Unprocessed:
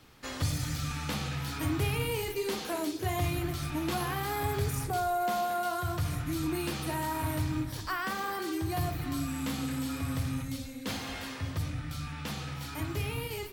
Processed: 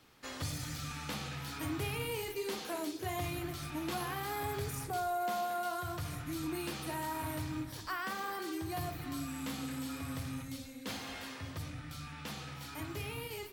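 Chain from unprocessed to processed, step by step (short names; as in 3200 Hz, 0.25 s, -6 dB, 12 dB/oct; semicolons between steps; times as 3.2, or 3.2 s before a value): low shelf 130 Hz -8 dB; gain -4.5 dB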